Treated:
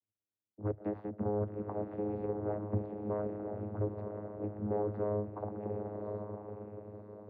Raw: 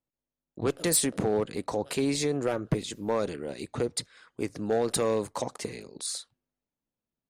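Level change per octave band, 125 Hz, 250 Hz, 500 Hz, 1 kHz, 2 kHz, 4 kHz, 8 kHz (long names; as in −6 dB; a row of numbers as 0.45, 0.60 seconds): −2.0 dB, −6.5 dB, −6.5 dB, −7.0 dB, −19.0 dB, below −40 dB, below −40 dB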